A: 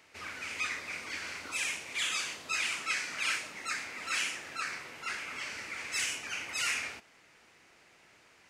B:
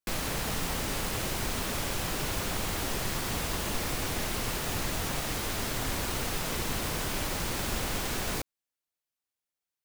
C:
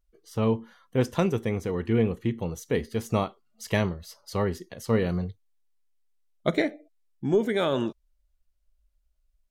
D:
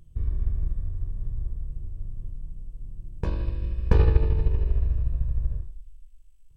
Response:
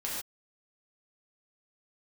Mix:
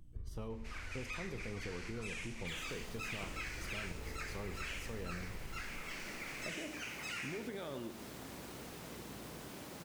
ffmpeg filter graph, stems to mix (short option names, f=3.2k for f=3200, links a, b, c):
-filter_complex "[0:a]acrossover=split=3500[a][b];[b]acompressor=threshold=-42dB:ratio=4:attack=1:release=60[c];[a][c]amix=inputs=2:normalize=0,adelay=500,volume=-3.5dB[d];[1:a]highpass=180,lowshelf=f=480:g=10.5,adelay=2400,volume=-18.5dB[e];[2:a]alimiter=limit=-22dB:level=0:latency=1,aeval=exprs='val(0)+0.002*(sin(2*PI*60*n/s)+sin(2*PI*2*60*n/s)/2+sin(2*PI*3*60*n/s)/3+sin(2*PI*4*60*n/s)/4+sin(2*PI*5*60*n/s)/5)':c=same,volume=-10dB,asplit=2[f][g];[g]volume=-12dB[h];[3:a]equalizer=f=62:t=o:w=0.92:g=-9,acompressor=threshold=-31dB:ratio=6,volume=-7.5dB,asplit=2[i][j];[j]volume=-10dB[k];[4:a]atrim=start_sample=2205[l];[h][k]amix=inputs=2:normalize=0[m];[m][l]afir=irnorm=-1:irlink=0[n];[d][e][f][i][n]amix=inputs=5:normalize=0,acompressor=threshold=-42dB:ratio=2.5"